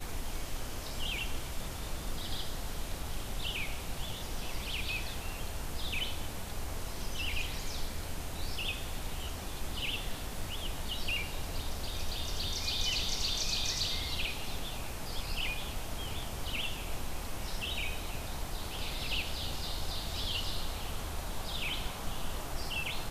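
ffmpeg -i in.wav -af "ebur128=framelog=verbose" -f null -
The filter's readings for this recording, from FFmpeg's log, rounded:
Integrated loudness:
  I:         -36.8 LUFS
  Threshold: -46.8 LUFS
Loudness range:
  LRA:         5.2 LU
  Threshold: -56.7 LUFS
  LRA low:   -38.5 LUFS
  LRA high:  -33.3 LUFS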